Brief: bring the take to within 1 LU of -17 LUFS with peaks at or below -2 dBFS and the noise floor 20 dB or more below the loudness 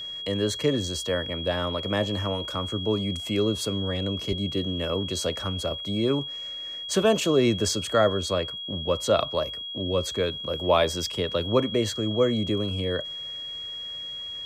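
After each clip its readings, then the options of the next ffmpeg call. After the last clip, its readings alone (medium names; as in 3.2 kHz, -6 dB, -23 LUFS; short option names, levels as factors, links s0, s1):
steady tone 3.3 kHz; tone level -33 dBFS; loudness -26.5 LUFS; peak level -9.0 dBFS; loudness target -17.0 LUFS
-> -af "bandreject=f=3300:w=30"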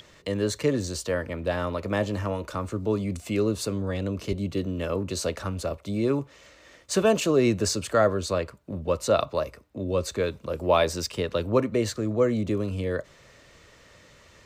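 steady tone not found; loudness -27.0 LUFS; peak level -9.0 dBFS; loudness target -17.0 LUFS
-> -af "volume=3.16,alimiter=limit=0.794:level=0:latency=1"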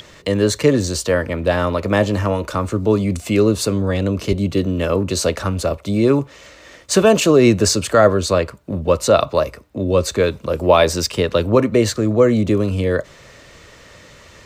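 loudness -17.5 LUFS; peak level -2.0 dBFS; noise floor -45 dBFS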